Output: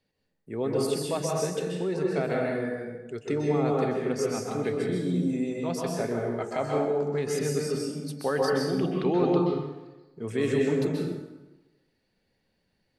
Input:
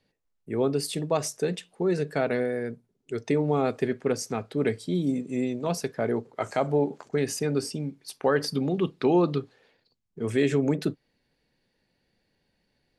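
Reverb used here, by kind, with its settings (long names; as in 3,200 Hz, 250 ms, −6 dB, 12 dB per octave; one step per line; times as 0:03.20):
dense smooth reverb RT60 1.1 s, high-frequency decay 0.7×, pre-delay 115 ms, DRR −2 dB
level −5 dB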